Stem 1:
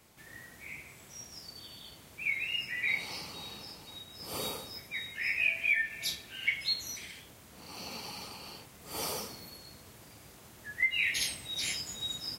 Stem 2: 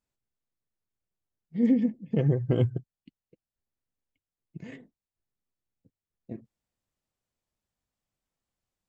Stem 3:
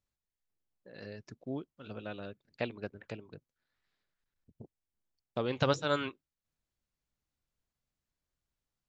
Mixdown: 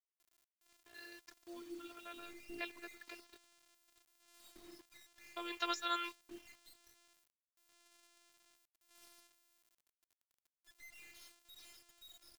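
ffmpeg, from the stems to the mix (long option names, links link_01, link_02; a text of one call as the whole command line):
ffmpeg -i stem1.wav -i stem2.wav -i stem3.wav -filter_complex "[0:a]highpass=580,aeval=exprs='(tanh(56.2*val(0)+0.4)-tanh(0.4))/56.2':channel_layout=same,volume=-18.5dB[link_01];[1:a]equalizer=frequency=200:width_type=o:width=2.9:gain=13,flanger=delay=19.5:depth=5.1:speed=1.6,acompressor=threshold=-22dB:ratio=16,volume=-16.5dB[link_02];[2:a]acontrast=29,highpass=frequency=450:width=0.5412,highpass=frequency=450:width=1.3066,equalizer=frequency=650:width=2.5:gain=-12.5,volume=-3.5dB,asplit=2[link_03][link_04];[link_04]apad=whole_len=391703[link_05];[link_02][link_05]sidechaincompress=threshold=-54dB:ratio=8:attack=32:release=194[link_06];[link_01][link_06][link_03]amix=inputs=3:normalize=0,equalizer=frequency=490:width_type=o:width=0.33:gain=-4,afftfilt=real='hypot(re,im)*cos(PI*b)':imag='0':win_size=512:overlap=0.75,acrusher=bits=9:mix=0:aa=0.000001" out.wav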